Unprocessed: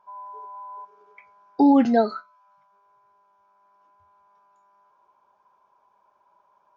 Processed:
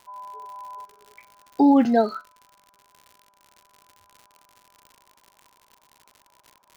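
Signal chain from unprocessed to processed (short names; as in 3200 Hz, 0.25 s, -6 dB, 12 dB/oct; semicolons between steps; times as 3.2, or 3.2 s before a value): crackle 97/s -37 dBFS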